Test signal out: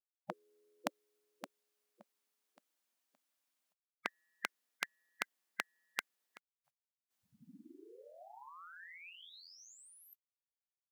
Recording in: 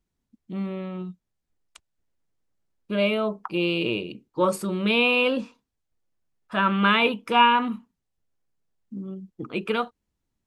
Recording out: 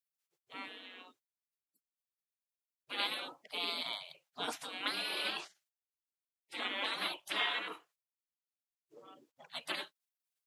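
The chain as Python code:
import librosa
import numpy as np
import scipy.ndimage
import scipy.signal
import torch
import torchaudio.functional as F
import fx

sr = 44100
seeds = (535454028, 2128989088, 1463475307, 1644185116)

y = fx.brickwall_highpass(x, sr, low_hz=180.0)
y = fx.spec_gate(y, sr, threshold_db=-25, keep='weak')
y = y * librosa.db_to_amplitude(4.5)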